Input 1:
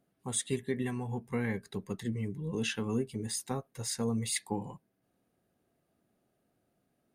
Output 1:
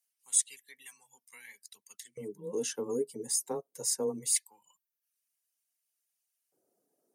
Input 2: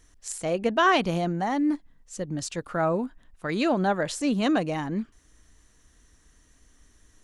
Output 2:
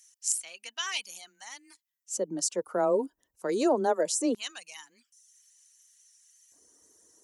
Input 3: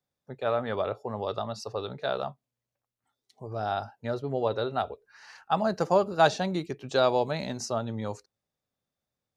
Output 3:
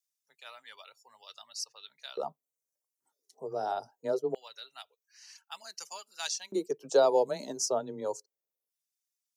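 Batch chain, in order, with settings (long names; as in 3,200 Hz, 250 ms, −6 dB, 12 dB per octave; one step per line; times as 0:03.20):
drawn EQ curve 100 Hz 0 dB, 1,100 Hz −15 dB, 2,500 Hz −24 dB, 3,600 Hz −23 dB, 5,700 Hz −9 dB
reverb reduction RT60 0.72 s
frequency shifter +14 Hz
high-shelf EQ 2,200 Hz +10 dB
tape wow and flutter 16 cents
hollow resonant body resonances 940/3,000 Hz, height 7 dB
auto-filter high-pass square 0.23 Hz 440–2,500 Hz
level +6.5 dB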